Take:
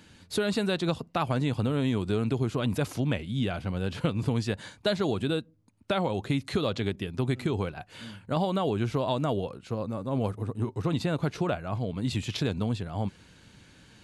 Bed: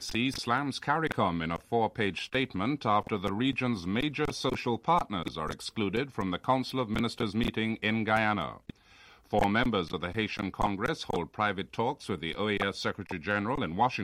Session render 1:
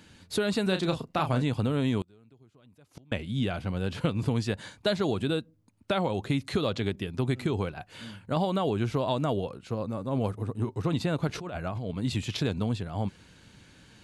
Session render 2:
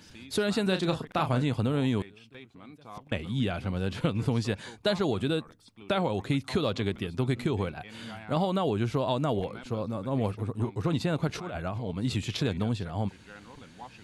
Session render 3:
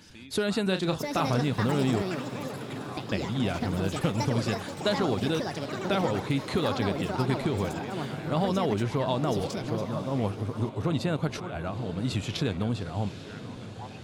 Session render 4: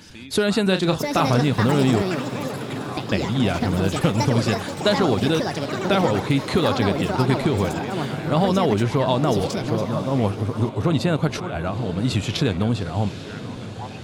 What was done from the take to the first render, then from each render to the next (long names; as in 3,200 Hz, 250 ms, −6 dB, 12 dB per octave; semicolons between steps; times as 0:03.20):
0:00.63–0:01.43: double-tracking delay 32 ms −8 dB; 0:02.01–0:03.12: gate with flip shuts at −27 dBFS, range −30 dB; 0:11.27–0:11.91: compressor whose output falls as the input rises −34 dBFS
mix in bed −19 dB
feedback delay with all-pass diffusion 879 ms, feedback 61%, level −13 dB; delay with pitch and tempo change per echo 765 ms, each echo +6 semitones, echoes 3, each echo −6 dB
level +7.5 dB